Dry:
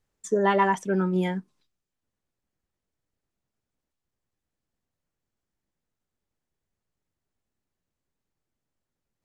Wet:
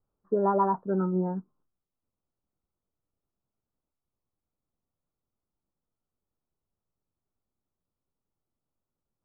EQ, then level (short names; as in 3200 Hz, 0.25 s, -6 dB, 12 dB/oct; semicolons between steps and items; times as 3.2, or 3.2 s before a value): steep low-pass 1400 Hz 72 dB/oct; -2.5 dB